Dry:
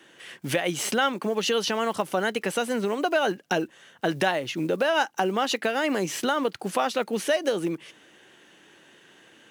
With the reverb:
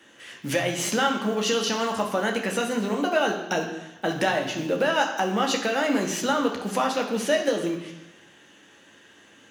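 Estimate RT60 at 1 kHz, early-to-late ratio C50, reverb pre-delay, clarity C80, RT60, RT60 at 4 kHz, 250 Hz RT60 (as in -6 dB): 1.1 s, 7.0 dB, 3 ms, 9.0 dB, 1.0 s, 1.1 s, 1.0 s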